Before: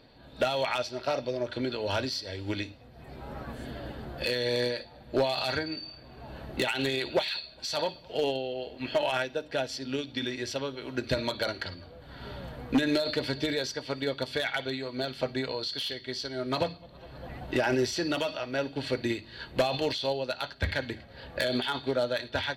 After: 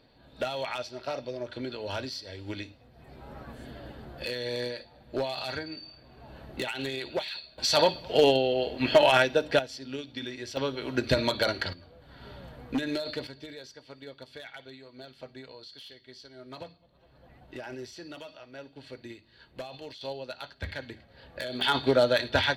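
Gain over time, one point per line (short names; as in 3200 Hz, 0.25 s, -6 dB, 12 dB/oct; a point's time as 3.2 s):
-4.5 dB
from 7.58 s +8 dB
from 9.59 s -4.5 dB
from 10.57 s +4 dB
from 11.73 s -5 dB
from 13.27 s -14 dB
from 20.01 s -7 dB
from 21.61 s +6 dB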